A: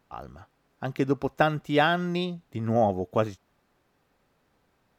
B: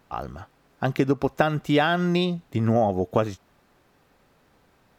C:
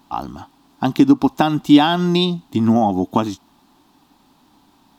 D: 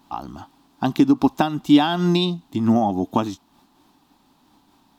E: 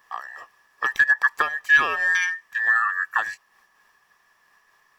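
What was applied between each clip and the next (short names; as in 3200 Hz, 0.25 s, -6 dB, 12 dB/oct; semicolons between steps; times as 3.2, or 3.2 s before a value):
compressor 6:1, threshold -25 dBFS, peak gain reduction 9 dB; gain +8 dB
EQ curve 130 Hz 0 dB, 290 Hz +14 dB, 490 Hz -8 dB, 900 Hz +12 dB, 1400 Hz 0 dB, 2100 Hz -2 dB, 3500 Hz +11 dB, 5900 Hz +8 dB
noise-modulated level, depth 60%
band inversion scrambler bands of 2000 Hz; gain -3 dB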